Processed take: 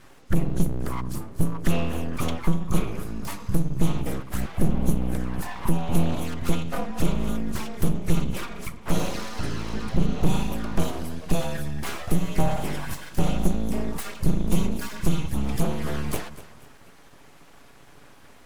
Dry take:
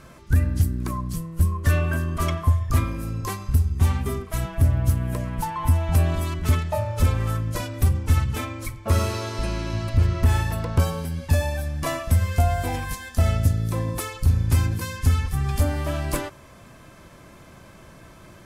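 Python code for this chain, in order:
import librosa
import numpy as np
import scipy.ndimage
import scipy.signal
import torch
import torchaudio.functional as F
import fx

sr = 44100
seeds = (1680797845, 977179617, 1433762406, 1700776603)

y = fx.env_flanger(x, sr, rest_ms=8.9, full_db=-19.5)
y = fx.echo_feedback(y, sr, ms=244, feedback_pct=38, wet_db=-16)
y = np.abs(y)
y = y * librosa.db_to_amplitude(1.0)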